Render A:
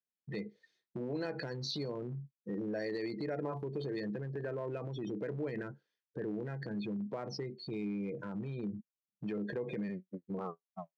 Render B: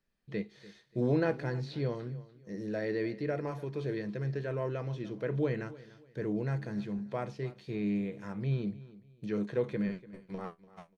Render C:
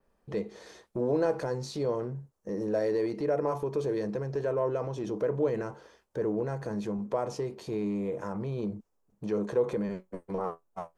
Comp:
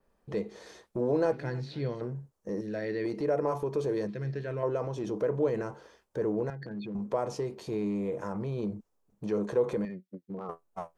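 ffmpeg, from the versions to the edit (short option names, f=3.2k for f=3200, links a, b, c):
-filter_complex "[1:a]asplit=3[a][b][c];[0:a]asplit=2[d][e];[2:a]asplit=6[f][g][h][i][j][k];[f]atrim=end=1.322[l];[a]atrim=start=1.318:end=2.012[m];[g]atrim=start=2.008:end=2.612[n];[b]atrim=start=2.608:end=3.052[o];[h]atrim=start=3.048:end=4.072[p];[c]atrim=start=4.068:end=4.632[q];[i]atrim=start=4.628:end=6.502[r];[d]atrim=start=6.498:end=6.952[s];[j]atrim=start=6.948:end=9.852[t];[e]atrim=start=9.848:end=10.492[u];[k]atrim=start=10.488[v];[l][m]acrossfade=d=0.004:c1=hsin:c2=hsin[w];[w][n]acrossfade=d=0.004:c1=hsin:c2=hsin[x];[x][o]acrossfade=d=0.004:c1=hsin:c2=hsin[y];[y][p]acrossfade=d=0.004:c1=hsin:c2=hsin[z];[z][q]acrossfade=d=0.004:c1=hsin:c2=hsin[aa];[aa][r]acrossfade=d=0.004:c1=hsin:c2=hsin[ab];[ab][s]acrossfade=d=0.004:c1=hsin:c2=hsin[ac];[ac][t]acrossfade=d=0.004:c1=hsin:c2=hsin[ad];[ad][u]acrossfade=d=0.004:c1=hsin:c2=hsin[ae];[ae][v]acrossfade=d=0.004:c1=hsin:c2=hsin"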